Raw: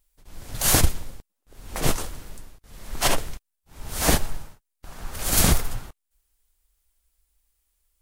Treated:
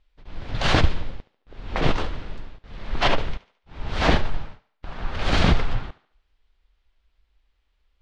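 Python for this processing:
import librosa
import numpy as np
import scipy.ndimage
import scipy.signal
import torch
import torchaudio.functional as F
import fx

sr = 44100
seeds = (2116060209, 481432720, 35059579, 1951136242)

p1 = scipy.signal.sosfilt(scipy.signal.butter(4, 3800.0, 'lowpass', fs=sr, output='sos'), x)
p2 = fx.over_compress(p1, sr, threshold_db=-24.0, ratio=-1.0)
p3 = p1 + (p2 * 10.0 ** (-2.5 / 20.0))
y = fx.echo_thinned(p3, sr, ms=72, feedback_pct=43, hz=250.0, wet_db=-17.0)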